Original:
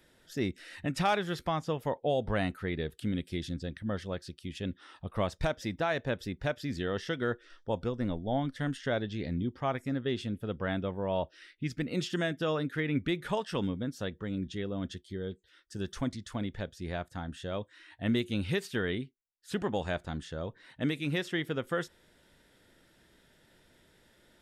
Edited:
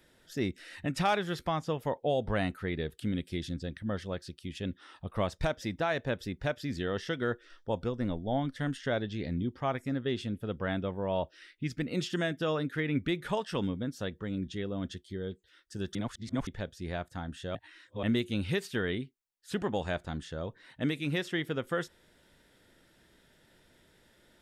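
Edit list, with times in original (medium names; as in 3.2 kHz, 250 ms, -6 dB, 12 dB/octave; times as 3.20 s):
15.95–16.47 s: reverse
17.55–18.03 s: reverse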